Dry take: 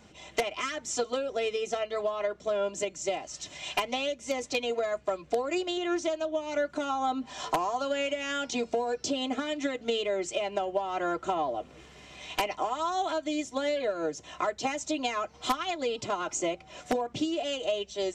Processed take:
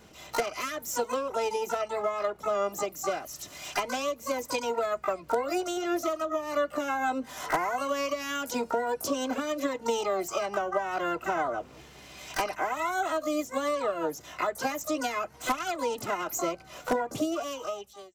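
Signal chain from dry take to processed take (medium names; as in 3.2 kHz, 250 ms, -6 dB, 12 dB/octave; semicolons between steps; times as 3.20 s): fade out at the end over 0.88 s; harmony voices +12 st -5 dB; dynamic bell 3.4 kHz, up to -6 dB, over -48 dBFS, Q 1.2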